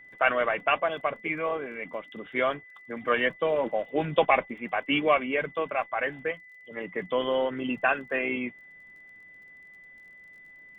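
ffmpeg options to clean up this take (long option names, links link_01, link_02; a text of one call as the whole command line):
ffmpeg -i in.wav -af "adeclick=threshold=4,bandreject=frequency=2000:width=30" out.wav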